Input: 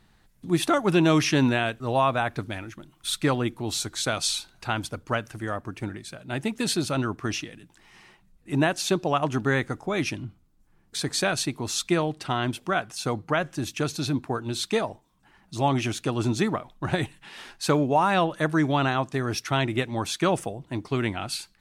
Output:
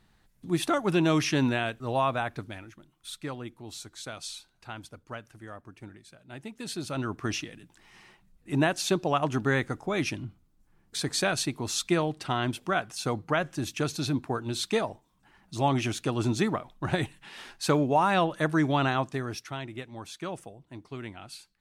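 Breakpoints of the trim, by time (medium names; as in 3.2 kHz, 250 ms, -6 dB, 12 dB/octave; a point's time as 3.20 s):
2.14 s -4 dB
3.20 s -13 dB
6.56 s -13 dB
7.20 s -2 dB
19.04 s -2 dB
19.60 s -13 dB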